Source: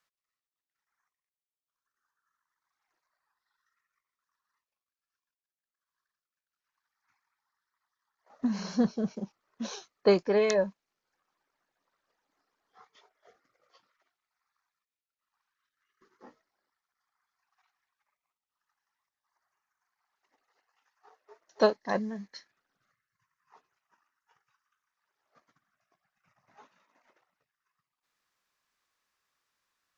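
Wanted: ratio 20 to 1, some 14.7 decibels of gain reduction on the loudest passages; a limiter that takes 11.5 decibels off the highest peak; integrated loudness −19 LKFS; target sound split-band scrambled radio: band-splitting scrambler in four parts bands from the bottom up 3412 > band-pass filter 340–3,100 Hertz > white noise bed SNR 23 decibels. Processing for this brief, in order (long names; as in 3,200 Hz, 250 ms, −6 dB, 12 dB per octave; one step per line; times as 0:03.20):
downward compressor 20 to 1, threshold −31 dBFS
brickwall limiter −31 dBFS
band-splitting scrambler in four parts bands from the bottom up 3412
band-pass filter 340–3,100 Hz
white noise bed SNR 23 dB
level +23.5 dB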